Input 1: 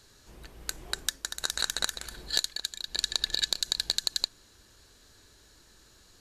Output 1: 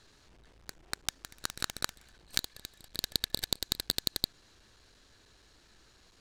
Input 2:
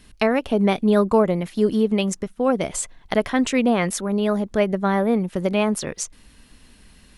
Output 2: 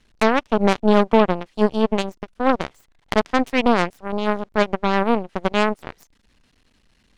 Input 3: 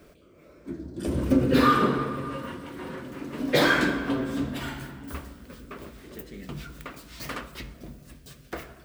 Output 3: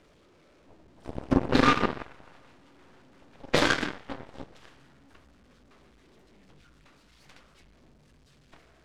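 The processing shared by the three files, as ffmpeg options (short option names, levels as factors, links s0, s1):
-af "aeval=exprs='val(0)+0.5*0.0282*sgn(val(0))':c=same,lowpass=5500,aeval=exprs='0.596*(cos(1*acos(clip(val(0)/0.596,-1,1)))-cos(1*PI/2))+0.133*(cos(4*acos(clip(val(0)/0.596,-1,1)))-cos(4*PI/2))+0.00473*(cos(5*acos(clip(val(0)/0.596,-1,1)))-cos(5*PI/2))+0.0335*(cos(6*acos(clip(val(0)/0.596,-1,1)))-cos(6*PI/2))+0.0944*(cos(7*acos(clip(val(0)/0.596,-1,1)))-cos(7*PI/2))':c=same"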